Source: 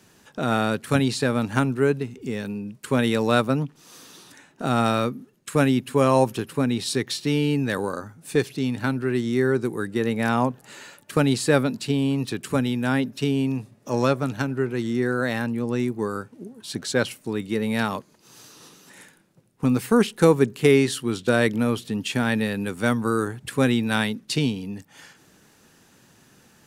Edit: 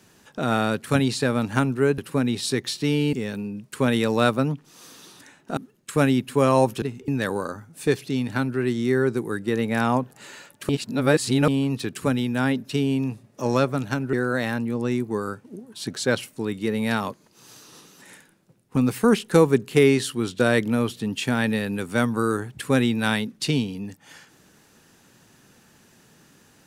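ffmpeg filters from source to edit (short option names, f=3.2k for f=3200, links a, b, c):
-filter_complex "[0:a]asplit=9[a][b][c][d][e][f][g][h][i];[a]atrim=end=1.982[j];[b]atrim=start=6.408:end=7.562[k];[c]atrim=start=2.238:end=4.682[l];[d]atrim=start=5.158:end=6.412[m];[e]atrim=start=1.978:end=2.242[n];[f]atrim=start=7.558:end=11.172[o];[g]atrim=start=11.168:end=11.962,asetpts=PTS-STARTPTS,areverse[p];[h]atrim=start=11.958:end=14.612[q];[i]atrim=start=15.008[r];[j][k]acrossfade=d=0.004:c1=hsin:c2=hsin[s];[s][l]acrossfade=d=0.004:c1=hsin:c2=hsin[t];[t][m]acrossfade=d=0.004:c1=hsin:c2=hsin[u];[u][n]acrossfade=d=0.004:c1=hsin:c2=hsin[v];[v][o]acrossfade=d=0.004:c1=hsin:c2=hsin[w];[w][p]acrossfade=d=0.004:c1=hsin:c2=hsin[x];[x][q]acrossfade=d=0.004:c1=hsin:c2=hsin[y];[y][r]acrossfade=d=0.004:c1=hsin:c2=hsin"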